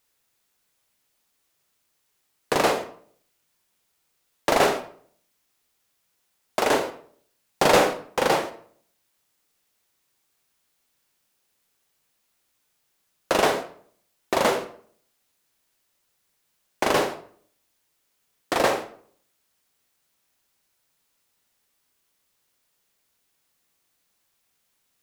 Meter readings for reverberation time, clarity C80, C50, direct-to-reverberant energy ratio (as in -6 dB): 0.55 s, 15.0 dB, 11.0 dB, 7.0 dB